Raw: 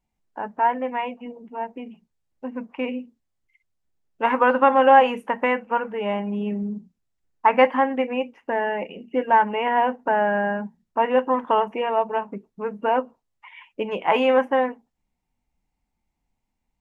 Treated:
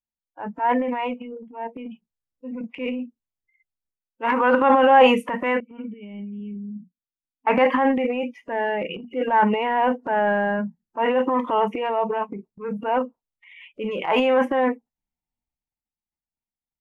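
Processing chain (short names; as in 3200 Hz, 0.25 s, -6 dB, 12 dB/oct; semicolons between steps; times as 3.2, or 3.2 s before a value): spectral noise reduction 23 dB; transient shaper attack -6 dB, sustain +10 dB; 5.6–7.47 vocal tract filter i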